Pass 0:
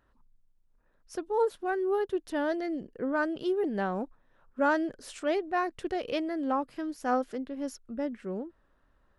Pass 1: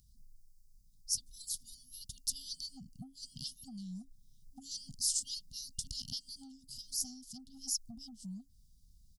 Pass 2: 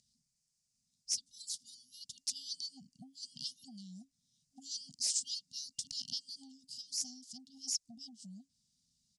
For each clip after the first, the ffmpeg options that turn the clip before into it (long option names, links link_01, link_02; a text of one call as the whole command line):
ffmpeg -i in.wav -af "afftfilt=real='re*(1-between(b*sr/4096,270,2800))':imag='im*(1-between(b*sr/4096,270,2800))':win_size=4096:overlap=0.75,acompressor=threshold=-43dB:ratio=12,firequalizer=gain_entry='entry(150,0);entry(370,-28);entry(700,14);entry(2900,-16);entry(4800,11)':delay=0.05:min_phase=1,volume=6.5dB" out.wav
ffmpeg -i in.wav -af "asoftclip=type=hard:threshold=-26dB,asuperstop=centerf=1200:order=4:qfactor=1.2,highpass=280,equalizer=frequency=350:width_type=q:width=4:gain=-7,equalizer=frequency=1000:width_type=q:width=4:gain=-10,equalizer=frequency=2500:width_type=q:width=4:gain=3,lowpass=frequency=8300:width=0.5412,lowpass=frequency=8300:width=1.3066,volume=1.5dB" out.wav